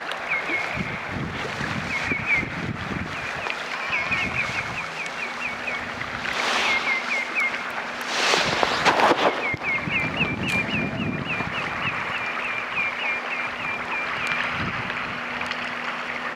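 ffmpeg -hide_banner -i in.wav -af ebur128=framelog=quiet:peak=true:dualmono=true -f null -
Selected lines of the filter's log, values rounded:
Integrated loudness:
  I:         -21.2 LUFS
  Threshold: -31.1 LUFS
Loudness range:
  LRA:         4.7 LU
  Threshold: -40.9 LUFS
  LRA low:   -23.0 LUFS
  LRA high:  -18.3 LUFS
True peak:
  Peak:       -1.3 dBFS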